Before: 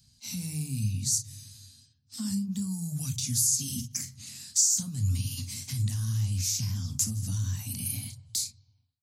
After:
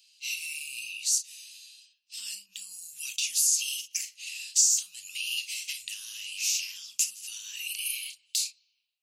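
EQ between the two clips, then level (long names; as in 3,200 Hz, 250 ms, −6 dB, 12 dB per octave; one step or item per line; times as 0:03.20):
high-pass with resonance 2,700 Hz, resonance Q 10
0.0 dB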